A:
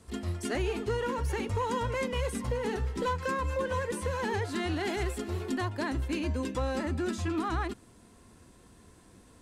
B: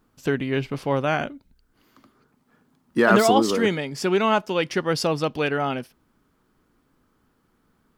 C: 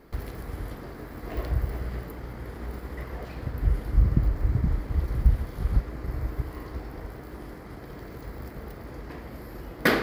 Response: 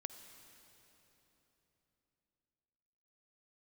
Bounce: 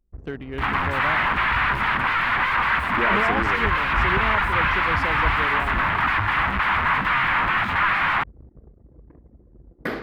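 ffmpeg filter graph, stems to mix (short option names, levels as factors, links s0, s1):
-filter_complex "[0:a]acrusher=bits=6:mix=0:aa=0.000001,aeval=exprs='0.0794*sin(PI/2*6.31*val(0)/0.0794)':c=same,firequalizer=gain_entry='entry(150,0);entry(430,-13);entry(1000,10);entry(2000,10);entry(5900,-18)':delay=0.05:min_phase=1,adelay=500,volume=1[s0];[1:a]volume=0.355[s1];[2:a]highshelf=f=3800:g=-4.5,volume=0.501[s2];[s0][s1][s2]amix=inputs=3:normalize=0,anlmdn=0.398,acrossover=split=2800[s3][s4];[s4]acompressor=threshold=0.00708:ratio=4:attack=1:release=60[s5];[s3][s5]amix=inputs=2:normalize=0"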